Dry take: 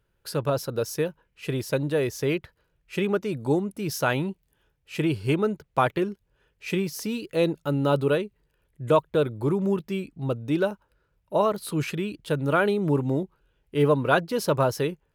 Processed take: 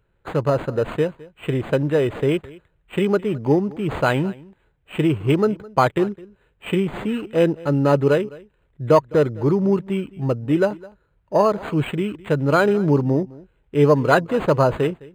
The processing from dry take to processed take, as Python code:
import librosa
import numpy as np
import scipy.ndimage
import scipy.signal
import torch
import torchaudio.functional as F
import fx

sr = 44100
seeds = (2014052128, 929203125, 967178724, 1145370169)

y = x + 10.0 ** (-21.5 / 20.0) * np.pad(x, (int(210 * sr / 1000.0), 0))[:len(x)]
y = np.interp(np.arange(len(y)), np.arange(len(y))[::8], y[::8])
y = y * librosa.db_to_amplitude(6.0)